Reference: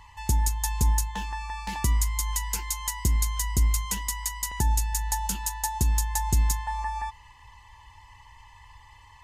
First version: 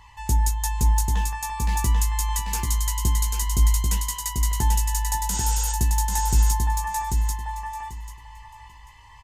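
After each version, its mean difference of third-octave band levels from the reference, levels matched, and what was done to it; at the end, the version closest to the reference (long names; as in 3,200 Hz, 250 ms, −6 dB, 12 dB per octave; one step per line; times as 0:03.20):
6.0 dB: healed spectral selection 0:05.33–0:05.70, 450–9,000 Hz before
hard clipping −14 dBFS, distortion −39 dB
double-tracking delay 17 ms −5.5 dB
on a send: repeating echo 790 ms, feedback 19%, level −4 dB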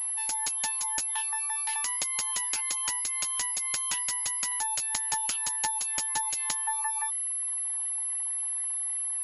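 10.5 dB: high-shelf EQ 3,500 Hz +11 dB
reverb reduction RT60 0.89 s
elliptic high-pass filter 780 Hz, stop band 60 dB
switching amplifier with a slow clock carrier 11,000 Hz
level −1.5 dB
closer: first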